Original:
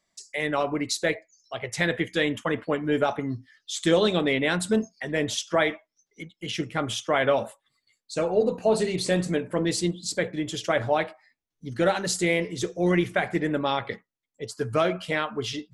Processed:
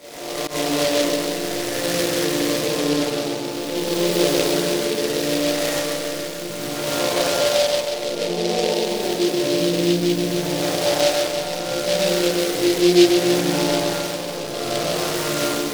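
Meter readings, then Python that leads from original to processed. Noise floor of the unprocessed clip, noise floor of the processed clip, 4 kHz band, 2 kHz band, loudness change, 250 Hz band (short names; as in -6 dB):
-82 dBFS, -28 dBFS, +9.5 dB, +1.5 dB, +5.5 dB, +6.5 dB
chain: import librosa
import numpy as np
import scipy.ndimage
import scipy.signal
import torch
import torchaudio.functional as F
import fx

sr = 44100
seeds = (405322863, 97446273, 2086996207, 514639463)

y = fx.spec_blur(x, sr, span_ms=631.0)
y = fx.graphic_eq(y, sr, hz=(125, 250, 500, 1000, 2000, 4000, 8000), db=(3, 6, 11, 7, 6, 10, 3))
y = fx.rev_spring(y, sr, rt60_s=2.6, pass_ms=(31, 46), chirp_ms=70, drr_db=-9.0)
y = fx.rider(y, sr, range_db=3, speed_s=2.0)
y = fx.resonator_bank(y, sr, root=46, chord='major', decay_s=0.51)
y = fx.auto_swell(y, sr, attack_ms=109.0)
y = fx.noise_mod_delay(y, sr, seeds[0], noise_hz=3600.0, depth_ms=0.12)
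y = F.gain(torch.from_numpy(y), 8.5).numpy()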